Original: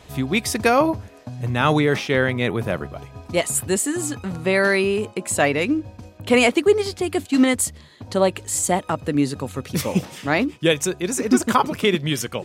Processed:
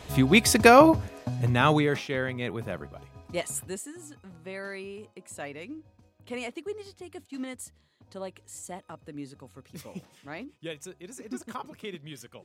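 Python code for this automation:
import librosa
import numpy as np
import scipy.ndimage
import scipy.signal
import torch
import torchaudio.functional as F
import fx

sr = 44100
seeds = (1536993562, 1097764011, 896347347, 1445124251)

y = fx.gain(x, sr, db=fx.line((1.3, 2.0), (2.12, -10.5), (3.53, -10.5), (3.95, -20.0)))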